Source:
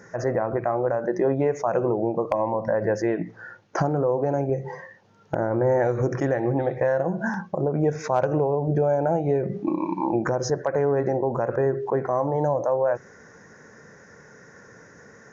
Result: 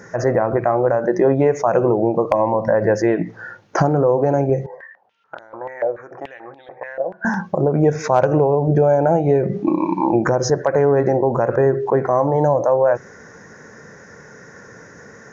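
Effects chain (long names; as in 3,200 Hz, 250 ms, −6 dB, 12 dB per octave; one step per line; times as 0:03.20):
0:04.66–0:07.25: band-pass on a step sequencer 6.9 Hz 590–3,600 Hz
level +7 dB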